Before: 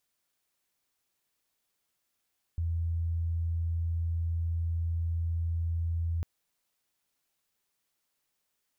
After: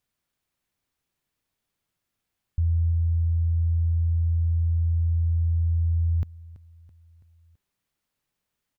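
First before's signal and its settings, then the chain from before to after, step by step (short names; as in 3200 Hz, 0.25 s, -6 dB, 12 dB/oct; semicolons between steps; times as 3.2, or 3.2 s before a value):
tone sine 83.5 Hz -27.5 dBFS 3.65 s
tone controls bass +9 dB, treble -5 dB; feedback echo 0.331 s, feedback 53%, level -19 dB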